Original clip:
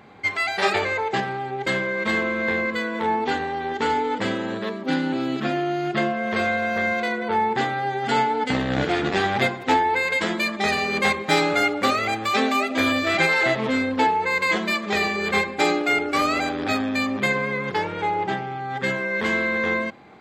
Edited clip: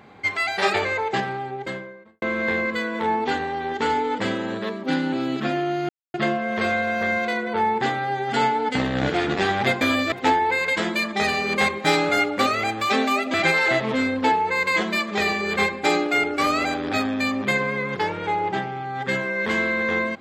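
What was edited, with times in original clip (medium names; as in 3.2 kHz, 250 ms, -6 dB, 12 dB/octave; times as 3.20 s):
1.25–2.22 s: studio fade out
5.89 s: insert silence 0.25 s
12.78–13.09 s: move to 9.56 s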